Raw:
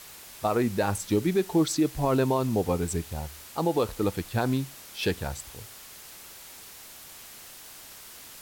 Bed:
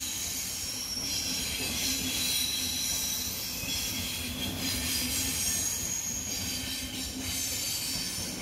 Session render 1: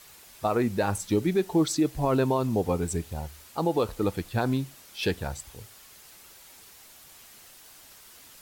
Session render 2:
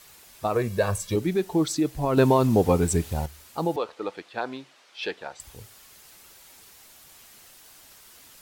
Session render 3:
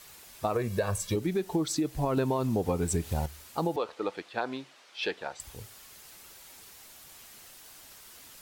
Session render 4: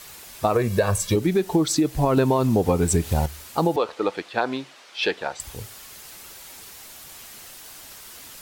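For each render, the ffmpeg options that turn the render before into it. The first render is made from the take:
-af "afftdn=nr=6:nf=-47"
-filter_complex "[0:a]asettb=1/sr,asplit=3[s0][s1][s2];[s0]atrim=end=0.554[s3];[s1]atrim=start=0.55:end=1.16,asetpts=PTS-STARTPTS,afade=t=in:d=0.004:c=qsin,afade=t=out:st=0.606:d=0.004:c=qsin,aecho=1:1:1.8:0.79,atrim=end_sample=26901[s4];[s2]atrim=start=1.156[s5];[s3][s4]acrossfade=d=0.004:c1=hsin:c2=qsin[s6];[s6][s5]acrossfade=d=0.004:c1=qsin:c2=hsin,asettb=1/sr,asplit=3[s7][s8][s9];[s7]atrim=end=2.174[s10];[s8]atrim=start=2.17:end=3.26,asetpts=PTS-STARTPTS,afade=t=in:d=0.004:c=qsin,afade=t=out:st=1.086:d=0.004:c=qsin,acontrast=60[s11];[s9]atrim=start=3.256[s12];[s10][s11]acrossfade=d=0.004:c1=hsin:c2=qsin[s13];[s13][s12]acrossfade=d=0.004:c1=qsin:c2=hsin,asettb=1/sr,asplit=3[s14][s15][s16];[s14]atrim=end=3.764[s17];[s15]atrim=start=3.76:end=5.4,asetpts=PTS-STARTPTS,afade=t=in:d=0.004:c=qsin,afade=t=out:st=1.636:d=0.004:c=qsin,highpass=470,lowpass=4100[s18];[s16]atrim=start=5.396[s19];[s17][s18]acrossfade=d=0.004:c1=hsin:c2=qsin[s20];[s20][s19]acrossfade=d=0.004:c1=qsin:c2=hsin"
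-af "acompressor=threshold=0.0562:ratio=6"
-af "volume=2.66"

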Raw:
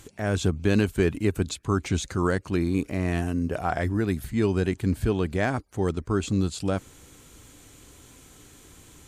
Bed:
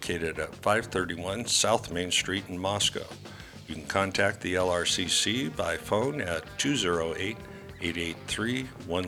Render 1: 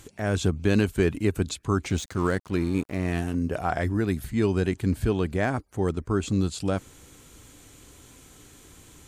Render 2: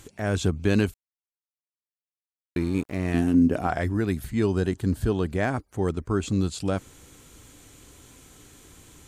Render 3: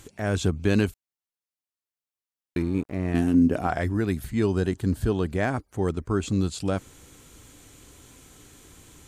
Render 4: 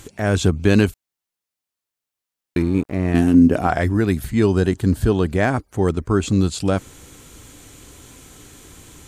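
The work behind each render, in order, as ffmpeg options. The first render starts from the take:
-filter_complex "[0:a]asettb=1/sr,asplit=3[s0][s1][s2];[s0]atrim=end=1.904[s3];[s1]atrim=start=1.9:end=3.35,asetpts=PTS-STARTPTS,afade=t=in:d=0.004:c=qsin,afade=t=out:st=1.446:d=0.004:c=qsin,aeval=exprs='sgn(val(0))*max(abs(val(0))-0.00841,0)':c=same[s4];[s2]atrim=start=3.346[s5];[s3][s4]acrossfade=d=0.004:c1=hsin:c2=qsin[s6];[s6][s5]acrossfade=d=0.004:c1=qsin:c2=hsin,asettb=1/sr,asplit=3[s7][s8][s9];[s7]atrim=end=5.314[s10];[s8]atrim=start=5.31:end=6.26,asetpts=PTS-STARTPTS,afade=t=in:d=0.004:c=qsin,afade=t=out:st=0.946:d=0.004:c=qsin,equalizer=f=4300:t=o:w=1.6:g=-3.5[s11];[s9]atrim=start=6.256[s12];[s10][s11]acrossfade=d=0.004:c1=hsin:c2=qsin[s13];[s13][s12]acrossfade=d=0.004:c1=qsin:c2=hsin"
-filter_complex "[0:a]asettb=1/sr,asplit=3[s0][s1][s2];[s0]atrim=end=3.144[s3];[s1]atrim=start=3.14:end=3.67,asetpts=PTS-STARTPTS,afade=t=in:d=0.004:c=qsin,afade=t=out:st=0.526:d=0.004:c=qsin,equalizer=f=260:w=1.5:g=10.5[s4];[s2]atrim=start=3.666[s5];[s3][s4]acrossfade=d=0.004:c1=hsin:c2=qsin[s6];[s6][s5]acrossfade=d=0.004:c1=qsin:c2=hsin,asettb=1/sr,asplit=3[s7][s8][s9];[s7]atrim=end=4.434[s10];[s8]atrim=start=4.43:end=5.29,asetpts=PTS-STARTPTS,afade=t=in:d=0.004:c=qsin,afade=t=out:st=0.856:d=0.004:c=qsin,equalizer=f=2300:t=o:w=0.35:g=-9[s11];[s9]atrim=start=5.286[s12];[s10][s11]acrossfade=d=0.004:c1=hsin:c2=qsin[s13];[s13][s12]acrossfade=d=0.004:c1=qsin:c2=hsin,asplit=3[s14][s15][s16];[s14]atrim=end=0.94,asetpts=PTS-STARTPTS,afade=t=out:st=0.936:d=0.004:c=hsin[s17];[s15]atrim=start=0.94:end=2.56,asetpts=PTS-STARTPTS,volume=0[s18];[s16]atrim=start=2.56,asetpts=PTS-STARTPTS,afade=t=in:d=0.004:c=hsin[s19];[s17][s18][s19]concat=n=3:v=0:a=1"
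-filter_complex "[0:a]asettb=1/sr,asplit=3[s0][s1][s2];[s0]atrim=end=2.624[s3];[s1]atrim=start=2.62:end=3.15,asetpts=PTS-STARTPTS,afade=t=in:d=0.004:c=qsin,afade=t=out:st=0.526:d=0.004:c=qsin,highshelf=f=2000:g=-9[s4];[s2]atrim=start=3.146[s5];[s3][s4]acrossfade=d=0.004:c1=hsin:c2=qsin[s6];[s6][s5]acrossfade=d=0.004:c1=qsin:c2=hsin"
-af "volume=2.24"

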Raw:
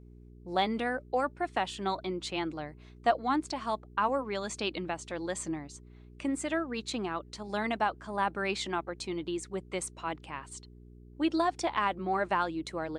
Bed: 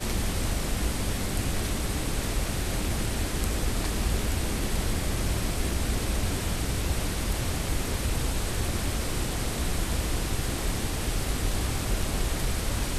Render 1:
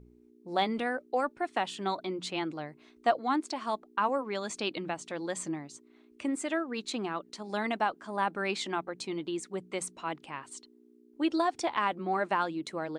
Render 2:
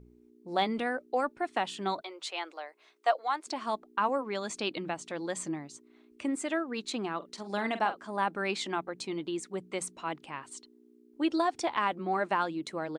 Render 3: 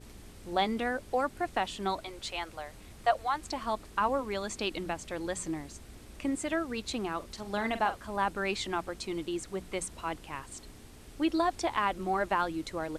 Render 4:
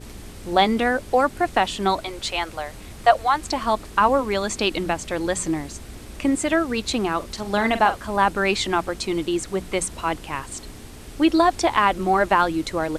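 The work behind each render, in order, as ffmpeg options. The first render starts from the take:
-af "bandreject=f=60:t=h:w=4,bandreject=f=120:t=h:w=4,bandreject=f=180:t=h:w=4"
-filter_complex "[0:a]asettb=1/sr,asplit=3[s0][s1][s2];[s0]atrim=end=2.014[s3];[s1]atrim=start=2.01:end=3.47,asetpts=PTS-STARTPTS,afade=t=in:d=0.004:c=qsin,afade=t=out:st=1.456:d=0.004:c=qsin,highpass=f=510:w=0.5412,highpass=f=510:w=1.3066[s4];[s2]atrim=start=3.466[s5];[s3][s4]acrossfade=d=0.004:c1=hsin:c2=qsin[s6];[s6][s5]acrossfade=d=0.004:c1=qsin:c2=hsin,asplit=3[s7][s8][s9];[s7]afade=t=out:st=7.21:d=0.02[s10];[s8]asplit=2[s11][s12];[s12]adelay=45,volume=0.282[s13];[s11][s13]amix=inputs=2:normalize=0,afade=t=in:st=7.21:d=0.02,afade=t=out:st=8.03:d=0.02[s14];[s9]afade=t=in:st=8.03:d=0.02[s15];[s10][s14][s15]amix=inputs=3:normalize=0"
-filter_complex "[1:a]volume=0.075[s0];[0:a][s0]amix=inputs=2:normalize=0"
-af "volume=3.55"

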